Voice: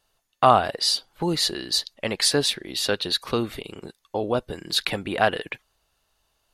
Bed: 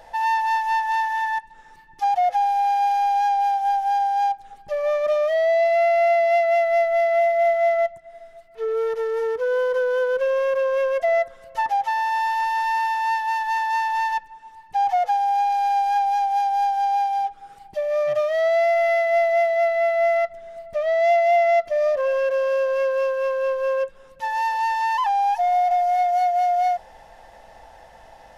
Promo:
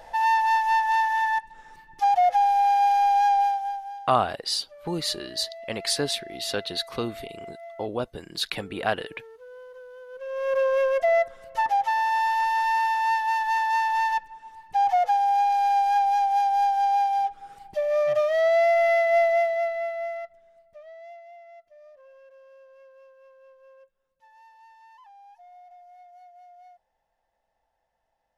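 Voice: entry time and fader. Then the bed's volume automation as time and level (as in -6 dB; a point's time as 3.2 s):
3.65 s, -5.0 dB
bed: 3.4 s 0 dB
4.15 s -23 dB
10.05 s -23 dB
10.56 s -1 dB
19.26 s -1 dB
21.36 s -30.5 dB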